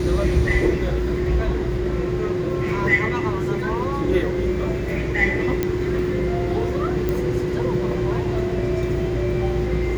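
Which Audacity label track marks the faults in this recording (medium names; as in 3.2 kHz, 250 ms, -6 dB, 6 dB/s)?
5.630000	5.630000	pop -8 dBFS
7.090000	7.090000	pop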